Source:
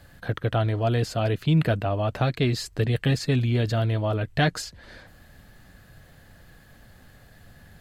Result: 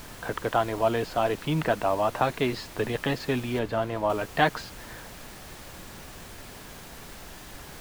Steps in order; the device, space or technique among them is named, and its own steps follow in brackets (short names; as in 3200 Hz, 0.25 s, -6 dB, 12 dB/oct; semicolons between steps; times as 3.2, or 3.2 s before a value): horn gramophone (BPF 250–3400 Hz; bell 960 Hz +10 dB 0.59 oct; wow and flutter; pink noise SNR 14 dB); 3.59–4.1 high shelf 3300 Hz -9 dB